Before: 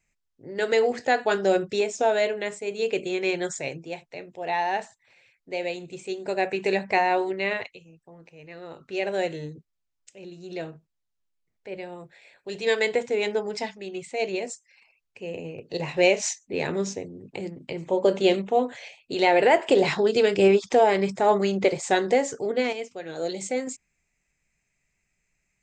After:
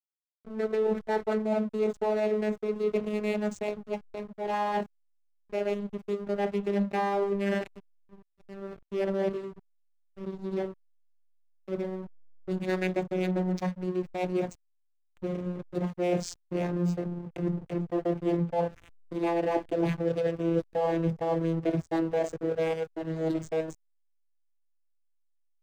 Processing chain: vocoder on a note that slides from A3, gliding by -6 st; reverse; compression 8:1, threshold -28 dBFS, peak gain reduction 16 dB; reverse; hysteresis with a dead band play -37.5 dBFS; trim +4 dB

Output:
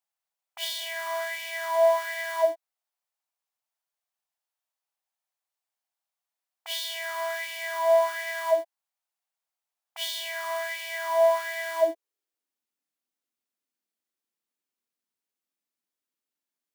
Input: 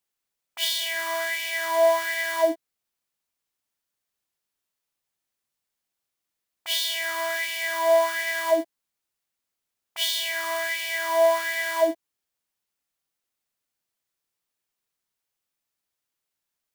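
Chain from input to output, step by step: high-pass sweep 730 Hz -> 240 Hz, 11.40–12.68 s; trim -7 dB

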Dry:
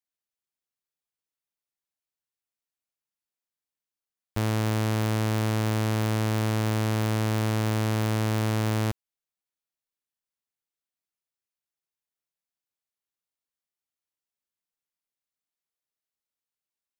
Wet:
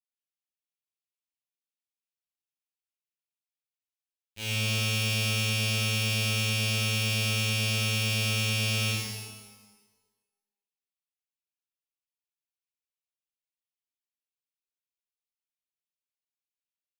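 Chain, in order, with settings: expander -13 dBFS; resonant high shelf 1.8 kHz +12.5 dB, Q 3; pitch-shifted reverb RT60 1.2 s, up +12 st, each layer -8 dB, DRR -10 dB

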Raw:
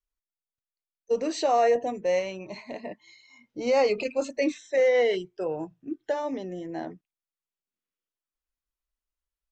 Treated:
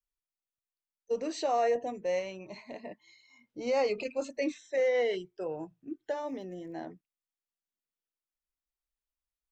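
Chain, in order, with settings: 6.22–6.76 s: crackle 150 per s -> 57 per s -53 dBFS; trim -6 dB

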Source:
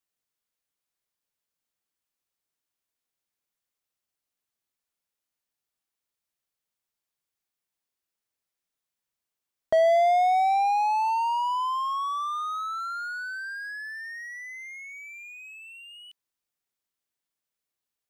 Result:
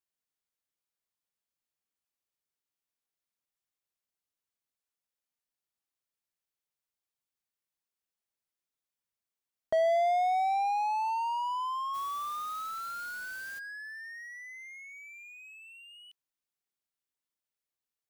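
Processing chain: 11.93–13.58 s: added noise white -46 dBFS; trim -6 dB

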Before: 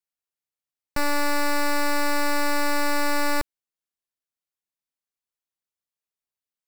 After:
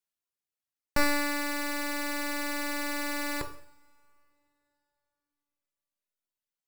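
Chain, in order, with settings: reverb removal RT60 2 s; two-slope reverb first 0.59 s, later 3.5 s, from -28 dB, DRR 6 dB

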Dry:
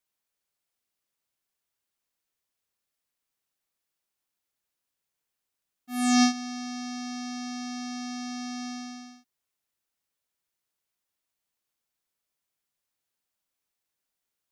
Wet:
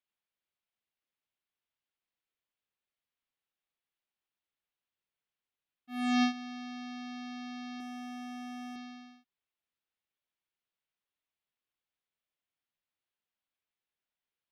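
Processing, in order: resonant high shelf 4.8 kHz -13 dB, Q 1.5; 7.80–8.76 s: overdrive pedal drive 25 dB, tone 7.5 kHz, clips at -29.5 dBFS; trim -6.5 dB

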